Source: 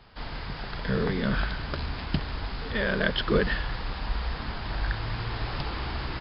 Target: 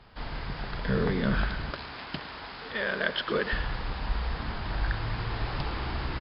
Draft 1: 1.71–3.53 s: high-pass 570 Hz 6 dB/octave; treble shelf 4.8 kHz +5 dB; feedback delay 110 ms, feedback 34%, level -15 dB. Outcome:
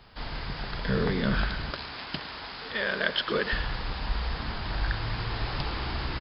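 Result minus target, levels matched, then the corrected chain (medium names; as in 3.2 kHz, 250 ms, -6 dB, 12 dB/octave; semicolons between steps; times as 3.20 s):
4 kHz band +3.0 dB
1.71–3.53 s: high-pass 570 Hz 6 dB/octave; treble shelf 4.8 kHz -6.5 dB; feedback delay 110 ms, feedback 34%, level -15 dB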